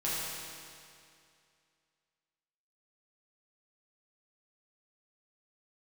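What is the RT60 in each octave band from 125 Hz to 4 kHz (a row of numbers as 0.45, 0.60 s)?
2.4, 2.4, 2.4, 2.4, 2.4, 2.3 s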